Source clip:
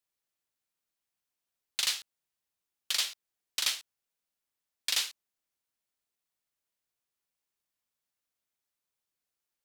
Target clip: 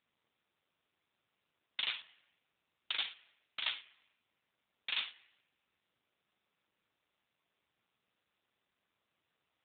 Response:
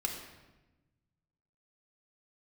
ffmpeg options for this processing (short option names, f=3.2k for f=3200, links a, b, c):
-filter_complex "[0:a]asplit=2[a][b];[1:a]atrim=start_sample=2205,lowpass=4.2k[c];[b][c]afir=irnorm=-1:irlink=0,volume=-16dB[d];[a][d]amix=inputs=2:normalize=0" -ar 8000 -c:a libopencore_amrnb -b:a 7400